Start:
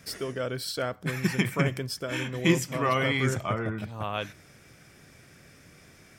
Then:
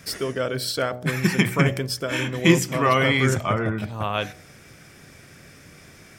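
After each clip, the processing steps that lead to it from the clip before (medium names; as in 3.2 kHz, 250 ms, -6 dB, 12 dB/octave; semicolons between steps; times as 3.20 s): de-hum 61.8 Hz, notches 14; trim +6.5 dB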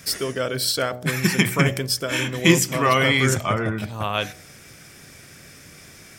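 treble shelf 3.3 kHz +7.5 dB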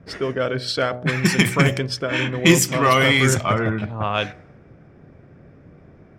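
level-controlled noise filter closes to 630 Hz, open at -14 dBFS; in parallel at -4.5 dB: saturation -13 dBFS, distortion -13 dB; on the sum: trim -1 dB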